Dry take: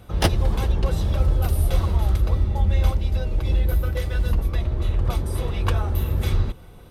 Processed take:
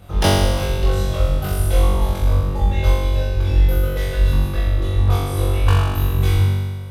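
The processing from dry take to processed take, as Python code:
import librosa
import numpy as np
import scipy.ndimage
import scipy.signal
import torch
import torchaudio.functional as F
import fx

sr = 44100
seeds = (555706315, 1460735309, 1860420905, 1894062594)

p1 = fx.dereverb_blind(x, sr, rt60_s=1.1)
y = p1 + fx.room_flutter(p1, sr, wall_m=3.6, rt60_s=1.5, dry=0)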